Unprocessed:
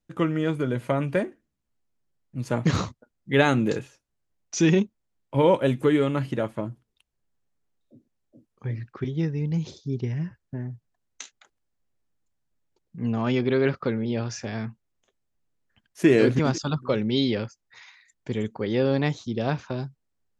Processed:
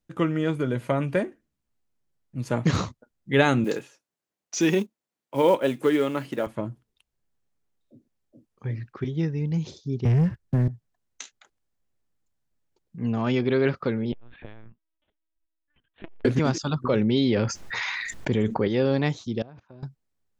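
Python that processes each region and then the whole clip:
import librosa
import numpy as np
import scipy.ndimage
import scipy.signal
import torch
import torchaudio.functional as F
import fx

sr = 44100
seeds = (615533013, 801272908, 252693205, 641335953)

y = fx.chain(x, sr, fx.quant_float(bits=4),
    fx.highpass(hz=240.0, slope=12), at=(3.64, 6.47))
y = fx.chain(y, sr, fx.low_shelf(hz=280.0, db=7.5),
    fx.leveller(passes=2),
    fx.band_squash(depth_pct=40), at=(10.05, 10.68))
y = fx.chain(y, sr, fx.level_steps(step_db=9),
    fx.lpc_vocoder(seeds[0], excitation='pitch_kept', order=10),
    fx.transformer_sat(knee_hz=490.0), at=(14.12, 16.25))
y = fx.chain(y, sr, fx.high_shelf(hz=4000.0, db=-9.5),
    fx.env_flatten(amount_pct=70), at=(16.84, 18.68))
y = fx.chain(y, sr, fx.lowpass(hz=1100.0, slope=6),
    fx.level_steps(step_db=23), at=(19.42, 19.83))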